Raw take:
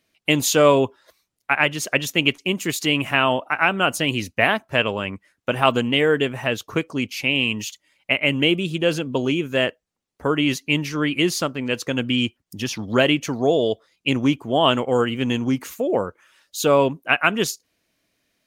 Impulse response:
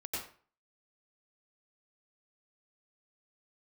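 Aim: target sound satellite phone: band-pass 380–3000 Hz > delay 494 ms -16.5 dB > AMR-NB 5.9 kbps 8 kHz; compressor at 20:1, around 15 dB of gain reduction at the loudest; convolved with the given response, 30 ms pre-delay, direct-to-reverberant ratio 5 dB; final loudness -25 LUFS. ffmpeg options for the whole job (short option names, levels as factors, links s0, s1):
-filter_complex "[0:a]acompressor=threshold=0.0501:ratio=20,asplit=2[s0][s1];[1:a]atrim=start_sample=2205,adelay=30[s2];[s1][s2]afir=irnorm=-1:irlink=0,volume=0.447[s3];[s0][s3]amix=inputs=2:normalize=0,highpass=380,lowpass=3000,aecho=1:1:494:0.15,volume=3.16" -ar 8000 -c:a libopencore_amrnb -b:a 5900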